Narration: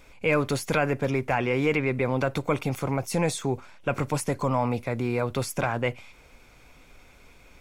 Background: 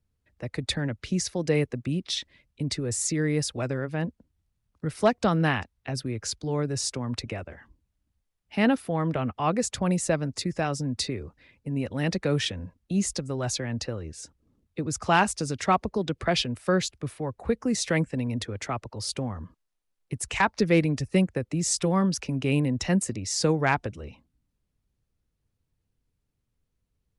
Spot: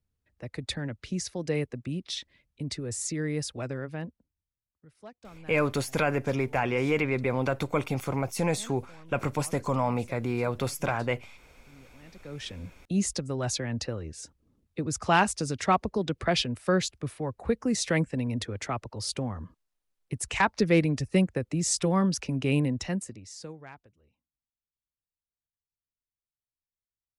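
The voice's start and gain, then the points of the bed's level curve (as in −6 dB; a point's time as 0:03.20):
5.25 s, −2.0 dB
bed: 0:03.90 −5 dB
0:04.87 −25.5 dB
0:12.09 −25.5 dB
0:12.67 −1 dB
0:22.65 −1 dB
0:23.88 −27.5 dB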